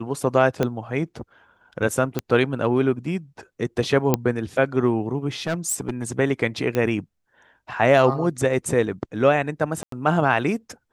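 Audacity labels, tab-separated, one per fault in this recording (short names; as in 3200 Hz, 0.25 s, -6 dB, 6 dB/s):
0.630000	0.630000	pop -9 dBFS
2.190000	2.190000	pop -10 dBFS
4.140000	4.140000	pop -4 dBFS
5.420000	6.190000	clipped -20 dBFS
6.750000	6.750000	pop -11 dBFS
9.830000	9.920000	gap 93 ms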